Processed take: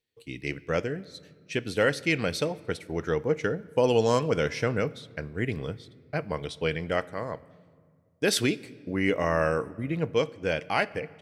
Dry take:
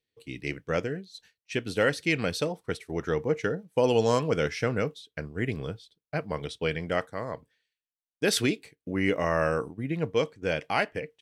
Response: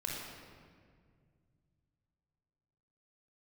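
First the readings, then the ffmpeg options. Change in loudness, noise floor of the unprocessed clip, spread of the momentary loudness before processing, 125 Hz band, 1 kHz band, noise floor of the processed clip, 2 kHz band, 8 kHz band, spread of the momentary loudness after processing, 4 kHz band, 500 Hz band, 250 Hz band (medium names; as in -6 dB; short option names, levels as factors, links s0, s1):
+0.5 dB, under -85 dBFS, 11 LU, +0.5 dB, +0.5 dB, -61 dBFS, +0.5 dB, +0.5 dB, 12 LU, +0.5 dB, +1.0 dB, +0.5 dB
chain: -filter_complex "[0:a]asplit=2[s0][s1];[1:a]atrim=start_sample=2205[s2];[s1][s2]afir=irnorm=-1:irlink=0,volume=0.1[s3];[s0][s3]amix=inputs=2:normalize=0"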